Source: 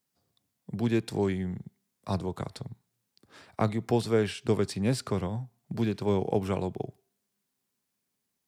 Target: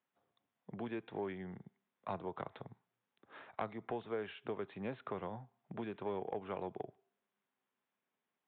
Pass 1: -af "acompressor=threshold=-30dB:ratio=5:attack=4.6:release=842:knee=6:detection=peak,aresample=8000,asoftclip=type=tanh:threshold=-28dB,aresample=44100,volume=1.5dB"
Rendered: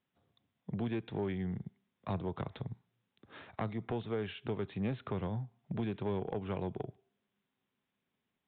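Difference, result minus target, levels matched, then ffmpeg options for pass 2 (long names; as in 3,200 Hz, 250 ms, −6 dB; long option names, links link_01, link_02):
1,000 Hz band −5.0 dB
-af "acompressor=threshold=-30dB:ratio=5:attack=4.6:release=842:knee=6:detection=peak,bandpass=frequency=1000:width_type=q:width=0.64:csg=0,aresample=8000,asoftclip=type=tanh:threshold=-28dB,aresample=44100,volume=1.5dB"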